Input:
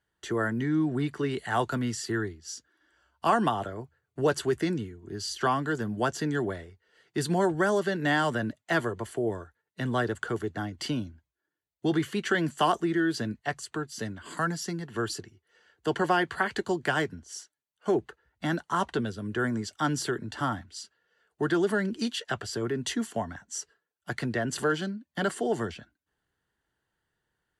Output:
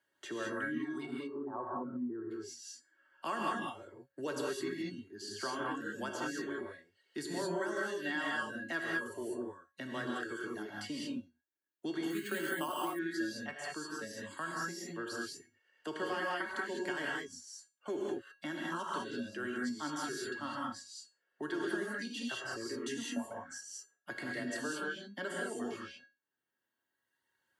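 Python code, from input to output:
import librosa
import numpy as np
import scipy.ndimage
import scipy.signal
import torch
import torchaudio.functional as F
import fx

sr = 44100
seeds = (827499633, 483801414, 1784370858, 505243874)

y = fx.cheby1_lowpass(x, sr, hz=1100.0, order=4, at=(1.05, 2.3), fade=0.02)
y = fx.dereverb_blind(y, sr, rt60_s=1.8)
y = scipy.signal.sosfilt(scipy.signal.butter(2, 200.0, 'highpass', fs=sr, output='sos'), y)
y = y + 0.31 * np.pad(y, (int(3.2 * sr / 1000.0), 0))[:len(y)]
y = fx.dynamic_eq(y, sr, hz=690.0, q=2.6, threshold_db=-44.0, ratio=4.0, max_db=-6)
y = fx.comb_fb(y, sr, f0_hz=550.0, decay_s=0.26, harmonics='all', damping=0.0, mix_pct=80)
y = fx.rev_gated(y, sr, seeds[0], gate_ms=230, shape='rising', drr_db=-3.5)
y = fx.resample_bad(y, sr, factor=4, down='filtered', up='hold', at=(12.1, 12.99))
y = fx.band_squash(y, sr, depth_pct=40)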